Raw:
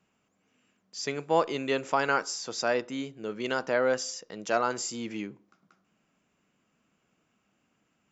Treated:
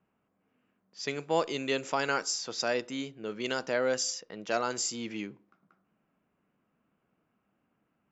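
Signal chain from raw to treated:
dynamic equaliser 1,100 Hz, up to −4 dB, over −37 dBFS, Q 0.97
low-pass that shuts in the quiet parts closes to 1,400 Hz, open at −26 dBFS
high-shelf EQ 3,300 Hz +8 dB
level −2 dB

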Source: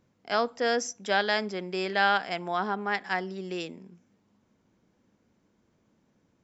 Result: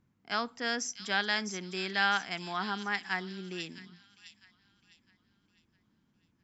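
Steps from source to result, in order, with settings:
parametric band 540 Hz −13.5 dB 1.1 octaves
on a send: delay with a high-pass on its return 657 ms, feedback 41%, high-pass 3,600 Hz, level −5.5 dB
on the sum: one half of a high-frequency compander decoder only
level −1 dB

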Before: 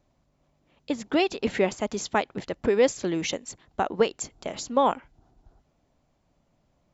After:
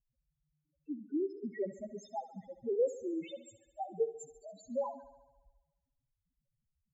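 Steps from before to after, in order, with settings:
spectral peaks only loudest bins 1
feedback echo with a high-pass in the loop 70 ms, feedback 67%, high-pass 170 Hz, level −15 dB
level −4 dB

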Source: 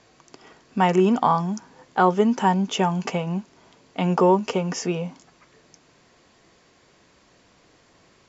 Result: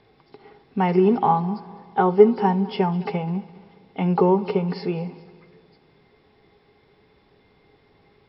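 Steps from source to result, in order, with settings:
hearing-aid frequency compression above 2,900 Hz 1.5 to 1
bass and treble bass +8 dB, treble −4 dB
hollow resonant body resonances 420/810/2,100/3,500 Hz, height 15 dB, ringing for 90 ms
on a send: echo machine with several playback heads 68 ms, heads first and third, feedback 60%, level −21 dB
on the sum: level −5.5 dB

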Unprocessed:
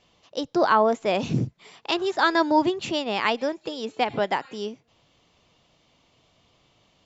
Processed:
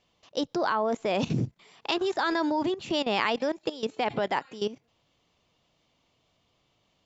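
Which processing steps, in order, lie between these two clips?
output level in coarse steps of 15 dB
level +4 dB

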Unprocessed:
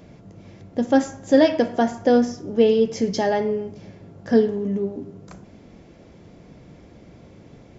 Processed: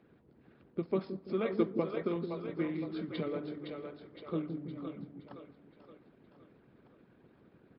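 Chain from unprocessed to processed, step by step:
three-way crossover with the lows and the highs turned down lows −20 dB, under 210 Hz, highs −20 dB, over 4,600 Hz
echo with a time of its own for lows and highs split 620 Hz, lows 166 ms, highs 516 ms, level −5 dB
pitch shifter −6 semitones
harmonic and percussive parts rebalanced harmonic −12 dB
level −8 dB

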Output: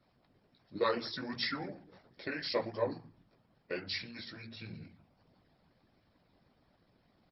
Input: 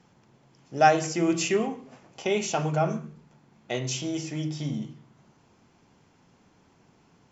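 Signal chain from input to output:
multi-voice chorus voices 2, 1.4 Hz, delay 15 ms, depth 3 ms
harmonic and percussive parts rebalanced harmonic −18 dB
pitch shifter −5.5 semitones

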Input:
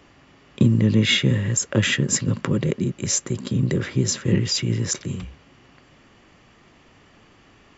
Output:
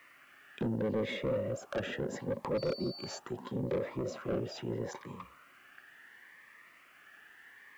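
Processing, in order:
high-shelf EQ 6,700 Hz −9 dB
in parallel at 0 dB: brickwall limiter −12.5 dBFS, peak gain reduction 7 dB
on the sum: envelope filter 550–1,800 Hz, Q 4.7, down, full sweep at −12.5 dBFS
0:02.57–0:03.17: steady tone 4,500 Hz −48 dBFS
soft clipping −30.5 dBFS, distortion −7 dB
bit reduction 12 bits
phaser whose notches keep moving one way rising 0.75 Hz
level +4 dB

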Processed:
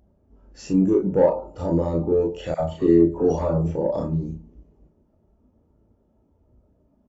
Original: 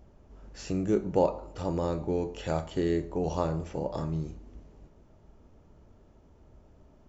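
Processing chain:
high-pass filter 100 Hz 6 dB per octave
high-shelf EQ 6,400 Hz +3.5 dB
in parallel at +2 dB: brickwall limiter −22 dBFS, peak gain reduction 9.5 dB
on the sum: soft clipping −17.5 dBFS, distortion −14 dB
double-tracking delay 36 ms −3 dB
0:02.54–0:03.75: all-pass dispersion lows, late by 57 ms, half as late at 920 Hz
on a send at −21 dB: convolution reverb RT60 0.45 s, pre-delay 3 ms
on the sum: every bin expanded away from the loudest bin 1.5 to 1
level +6 dB

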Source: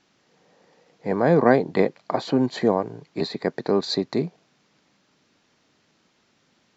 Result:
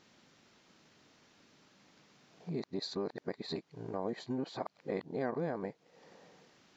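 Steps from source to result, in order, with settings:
played backwards from end to start
downward compressor 2.5 to 1, threshold −42 dBFS, peak gain reduction 20.5 dB

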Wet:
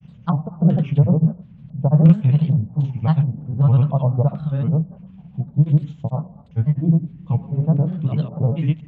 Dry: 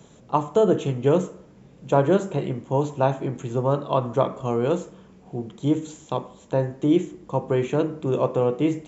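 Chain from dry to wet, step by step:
auto-filter low-pass square 1.4 Hz 710–3,000 Hz
granular cloud, pitch spread up and down by 3 semitones
low shelf with overshoot 240 Hz +13.5 dB, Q 3
level −6.5 dB

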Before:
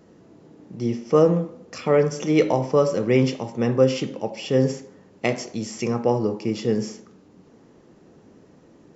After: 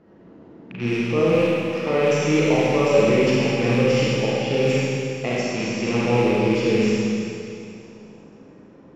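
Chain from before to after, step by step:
loose part that buzzes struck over −34 dBFS, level −21 dBFS
low-pass that shuts in the quiet parts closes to 2,400 Hz, open at −16.5 dBFS
brickwall limiter −12.5 dBFS, peak gain reduction 7.5 dB
four-comb reverb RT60 2.6 s, combs from 33 ms, DRR −6.5 dB
level −2 dB

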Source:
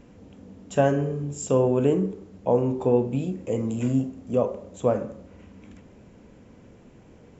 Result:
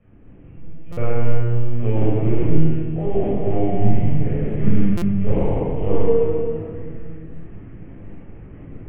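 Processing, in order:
bad sample-rate conversion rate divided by 6×, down filtered, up hold
flutter between parallel walls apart 3.6 metres, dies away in 1.3 s
log-companded quantiser 6 bits
dynamic equaliser 340 Hz, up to −6 dB, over −35 dBFS, Q 1
linear-prediction vocoder at 8 kHz pitch kept
change of speed 0.832×
speech leveller 2 s
convolution reverb RT60 1.7 s, pre-delay 18 ms, DRR −5.5 dB
buffer that repeats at 0:00.92/0:04.97, samples 256, times 8
level −10.5 dB

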